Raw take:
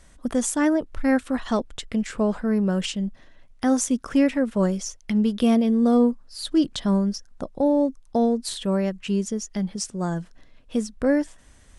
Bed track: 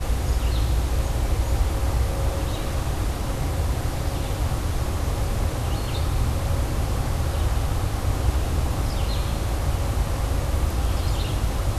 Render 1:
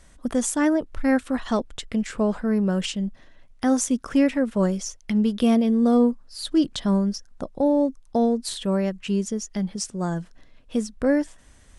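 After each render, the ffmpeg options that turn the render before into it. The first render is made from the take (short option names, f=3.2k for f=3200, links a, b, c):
-af anull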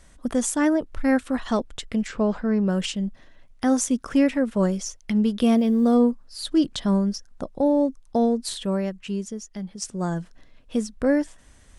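-filter_complex "[0:a]asettb=1/sr,asplit=3[a][b][c];[a]atrim=end=2.084[d];[b]atrim=start=2.08:end=2.68,asetpts=PTS-STARTPTS,afade=t=in:d=0.004:c=qsin,afade=t=out:st=0.596:d=0.004:c=qsin,lowpass=f=6.5k:w=0.5412,lowpass=f=6.5k:w=1.3066[e];[c]atrim=start=2.676[f];[d][e]acrossfade=d=0.004:c1=hsin:c2=qsin[g];[g][f]acrossfade=d=0.004:c1=qsin:c2=hsin,asettb=1/sr,asplit=3[h][i][j];[h]atrim=end=5.464[k];[i]atrim=start=5.46:end=5.94,asetpts=PTS-STARTPTS,afade=t=in:d=0.004:c=qsin,afade=t=out:st=0.476:d=0.004:c=qsin,acrusher=bits=8:mix=0:aa=0.5[l];[j]atrim=start=5.936[m];[k][l]acrossfade=d=0.004:c1=hsin:c2=qsin[n];[n][m]acrossfade=d=0.004:c1=qsin:c2=hsin,asplit=2[o][p];[o]atrim=end=9.82,asetpts=PTS-STARTPTS,afade=t=out:st=8.5:d=1.32:c=qua:silence=0.446684[q];[p]atrim=start=9.82,asetpts=PTS-STARTPTS,afade=t=in:d=0.004:c=hsin:silence=0.446684[r];[q][r]concat=n=2:v=0:a=1"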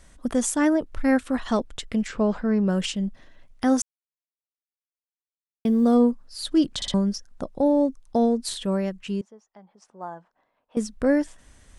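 -filter_complex "[0:a]asettb=1/sr,asplit=3[a][b][c];[a]atrim=end=9.214[d];[b]atrim=start=9.21:end=10.77,asetpts=PTS-STARTPTS,afade=t=in:d=0.004:c=qsin,afade=t=out:st=1.556:d=0.004:c=qsin,bandpass=f=870:t=q:w=2.4[e];[c]atrim=start=10.766[f];[d][e]acrossfade=d=0.004:c1=hsin:c2=qsin[g];[g][f]acrossfade=d=0.004:c1=qsin:c2=hsin,asplit=6[h][i][j][k][l][m];[h]atrim=end=3.82,asetpts=PTS-STARTPTS,afade=t=out:st=3.816:d=0.004:c=hsin[n];[i]atrim=start=3.82:end=5.65,asetpts=PTS-STARTPTS,volume=0[o];[j]atrim=start=5.65:end=6.822,asetpts=PTS-STARTPTS,afade=t=in:d=0.004:c=hsin[p];[k]atrim=start=6.758:end=6.822[q];[l]atrim=start=6.758:end=6.822[r];[m]atrim=start=6.938[s];[n][o][p]concat=n=3:v=0:a=1[t];[t][q]acrossfade=d=0.004:c1=hsin:c2=hsin[u];[u][r]acrossfade=d=0.004:c1=hsin:c2=hsin[v];[v][s]acrossfade=d=0.004:c1=hsin:c2=hsin"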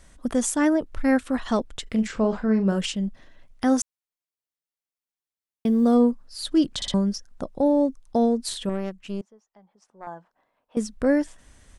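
-filter_complex "[0:a]asplit=3[a][b][c];[a]afade=t=out:st=1.86:d=0.02[d];[b]asplit=2[e][f];[f]adelay=41,volume=-9dB[g];[e][g]amix=inputs=2:normalize=0,afade=t=in:st=1.86:d=0.02,afade=t=out:st=2.78:d=0.02[h];[c]afade=t=in:st=2.78:d=0.02[i];[d][h][i]amix=inputs=3:normalize=0,asettb=1/sr,asplit=3[j][k][l];[j]atrim=end=8.694[m];[k]atrim=start=8.69:end=10.07,asetpts=PTS-STARTPTS,afade=t=in:d=0.004:c=qsin,afade=t=out:st=1.376:d=0.004:c=qsin,aeval=exprs='(tanh(12.6*val(0)+0.8)-tanh(0.8))/12.6':c=same[n];[l]atrim=start=10.066[o];[m][n]acrossfade=d=0.004:c1=hsin:c2=qsin[p];[p][o]acrossfade=d=0.004:c1=qsin:c2=hsin"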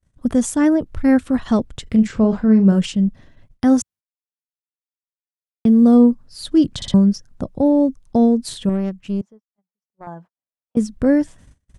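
-af "agate=range=-38dB:threshold=-48dB:ratio=16:detection=peak,equalizer=f=110:t=o:w=2.6:g=14"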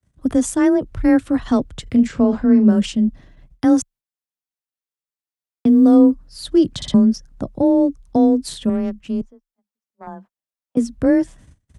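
-af "afreqshift=21"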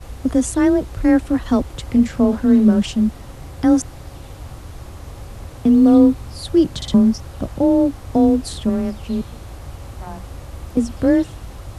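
-filter_complex "[1:a]volume=-10dB[a];[0:a][a]amix=inputs=2:normalize=0"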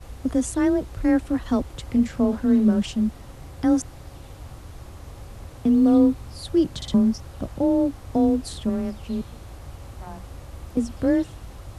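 -af "volume=-5.5dB"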